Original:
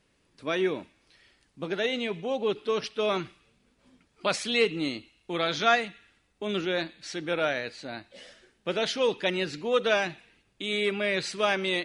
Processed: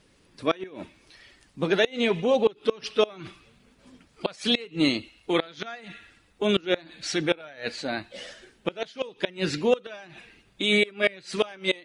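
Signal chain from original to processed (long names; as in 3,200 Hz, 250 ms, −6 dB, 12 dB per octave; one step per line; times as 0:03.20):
spectral magnitudes quantised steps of 15 dB
gate with flip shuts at −18 dBFS, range −25 dB
level +8.5 dB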